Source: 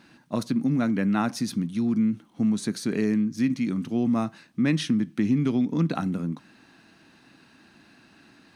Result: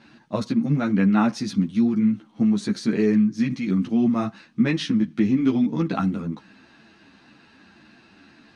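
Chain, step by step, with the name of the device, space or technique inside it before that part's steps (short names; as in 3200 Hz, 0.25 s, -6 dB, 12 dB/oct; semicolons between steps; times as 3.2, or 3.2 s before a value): string-machine ensemble chorus (ensemble effect; LPF 5700 Hz 12 dB/oct); gain +6 dB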